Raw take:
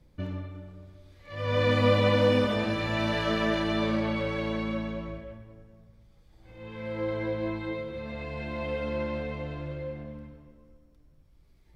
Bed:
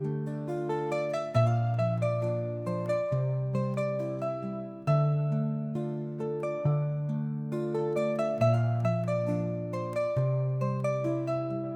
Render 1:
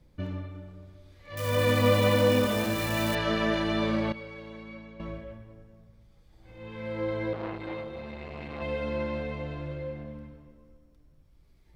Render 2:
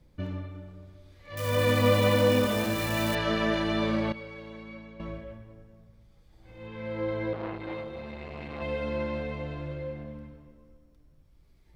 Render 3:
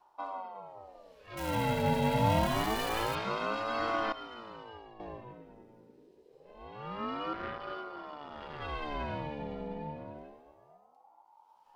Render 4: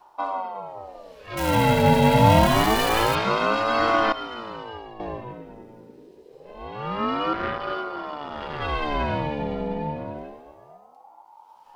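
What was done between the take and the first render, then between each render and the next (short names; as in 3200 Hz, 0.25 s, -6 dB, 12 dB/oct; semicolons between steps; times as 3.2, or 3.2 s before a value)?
1.37–3.15 switching spikes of -28.5 dBFS; 4.12–5 resonator 450 Hz, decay 0.49 s, mix 80%; 7.33–8.62 core saturation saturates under 950 Hz
6.67–7.69 high shelf 6400 Hz -6.5 dB
rotary speaker horn 0.65 Hz; ring modulator with a swept carrier 620 Hz, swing 45%, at 0.26 Hz
gain +11.5 dB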